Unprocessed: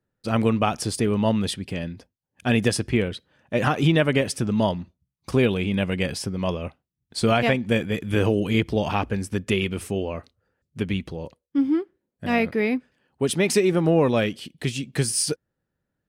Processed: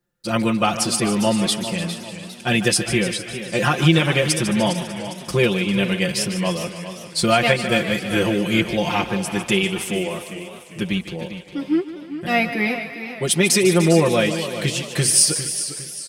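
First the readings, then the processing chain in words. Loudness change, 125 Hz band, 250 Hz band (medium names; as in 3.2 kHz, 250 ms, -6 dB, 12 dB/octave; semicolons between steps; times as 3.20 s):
+4.0 dB, +2.0 dB, +2.5 dB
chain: treble shelf 2.4 kHz +8 dB; comb 5.7 ms, depth 95%; on a send: thinning echo 149 ms, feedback 68%, high-pass 420 Hz, level -11 dB; on the sum: modulated delay 402 ms, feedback 42%, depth 114 cents, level -11.5 dB; trim -1 dB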